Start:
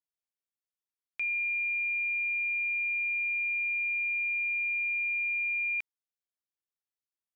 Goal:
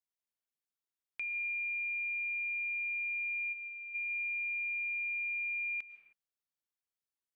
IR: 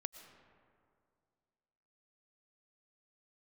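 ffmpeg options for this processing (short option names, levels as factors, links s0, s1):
-filter_complex "[0:a]asplit=3[s0][s1][s2];[s0]afade=t=out:st=3.52:d=0.02[s3];[s1]equalizer=f=2200:w=1.5:g=-13.5,afade=t=in:st=3.52:d=0.02,afade=t=out:st=3.94:d=0.02[s4];[s2]afade=t=in:st=3.94:d=0.02[s5];[s3][s4][s5]amix=inputs=3:normalize=0,acompressor=threshold=0.02:ratio=3[s6];[1:a]atrim=start_sample=2205,afade=t=out:st=0.37:d=0.01,atrim=end_sample=16758[s7];[s6][s7]afir=irnorm=-1:irlink=0"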